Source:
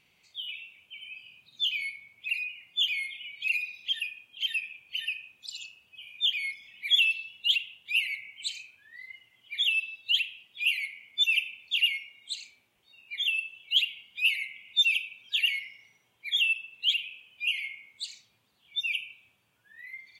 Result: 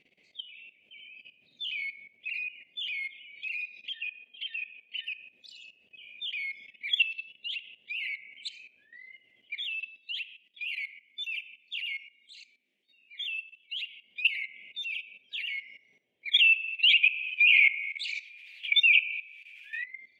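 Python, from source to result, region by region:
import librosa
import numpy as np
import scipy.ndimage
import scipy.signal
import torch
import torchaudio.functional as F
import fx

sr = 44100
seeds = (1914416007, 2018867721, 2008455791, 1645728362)

y = fx.chain(x, sr, fx.lowpass(hz=3900.0, slope=24),
    fx.low_shelf(hz=380.0, db=-9.5),
    fx.comb(ms=4.4, depth=0.81), at=(3.93, 5.04))
y = fx.chain(y, sr, fx.highpass(hz=200.0, slope=24),
    fx.peak_eq(hz=600.0, db=-14.0, octaves=2.6), at=(9.98, 14.04))
y = fx.chain(y, sr, fx.highpass_res(hz=2400.0, q=9.2),
    fx.high_shelf(hz=3900.0, db=5.0),
    fx.band_squash(depth_pct=70), at=(16.34, 19.84))
y = fx.curve_eq(y, sr, hz=(110.0, 240.0, 610.0, 920.0, 1400.0, 2000.0, 14000.0), db=(0, 13, 13, -4, -6, 10, -12))
y = fx.level_steps(y, sr, step_db=15)
y = y * librosa.db_to_amplitude(-4.5)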